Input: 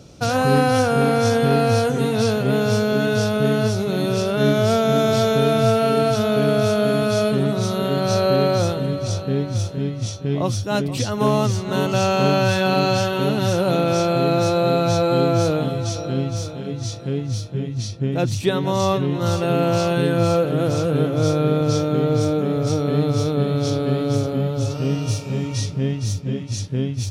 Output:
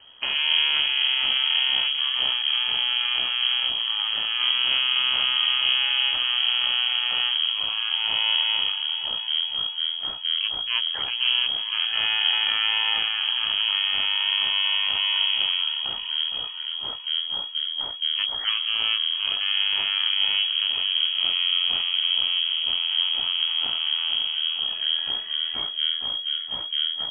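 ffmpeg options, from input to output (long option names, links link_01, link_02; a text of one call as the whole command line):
ffmpeg -i in.wav -filter_complex "[0:a]lowshelf=frequency=60:gain=-4.5,asplit=2[link_01][link_02];[link_02]alimiter=limit=-18.5dB:level=0:latency=1:release=183,volume=2dB[link_03];[link_01][link_03]amix=inputs=2:normalize=0,asetrate=25476,aresample=44100,atempo=1.73107,aeval=exprs='0.631*(cos(1*acos(clip(val(0)/0.631,-1,1)))-cos(1*PI/2))+0.224*(cos(2*acos(clip(val(0)/0.631,-1,1)))-cos(2*PI/2))':channel_layout=same,acrossover=split=770|2200[link_04][link_05][link_06];[link_04]aeval=exprs='max(val(0),0)':channel_layout=same[link_07];[link_07][link_05][link_06]amix=inputs=3:normalize=0,lowpass=frequency=2800:width_type=q:width=0.5098,lowpass=frequency=2800:width_type=q:width=0.6013,lowpass=frequency=2800:width_type=q:width=0.9,lowpass=frequency=2800:width_type=q:width=2.563,afreqshift=-3300,volume=-8dB" out.wav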